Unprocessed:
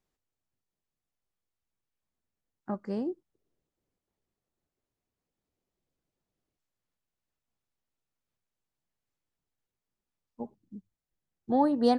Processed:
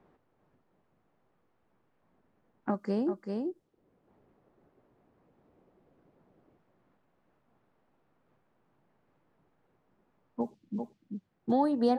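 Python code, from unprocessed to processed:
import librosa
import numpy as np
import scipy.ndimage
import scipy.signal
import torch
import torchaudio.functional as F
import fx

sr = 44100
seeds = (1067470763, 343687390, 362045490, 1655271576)

y = fx.env_lowpass(x, sr, base_hz=1200.0, full_db=-33.5)
y = y + 10.0 ** (-8.5 / 20.0) * np.pad(y, (int(388 * sr / 1000.0), 0))[:len(y)]
y = fx.band_squash(y, sr, depth_pct=70)
y = F.gain(torch.from_numpy(y), 2.5).numpy()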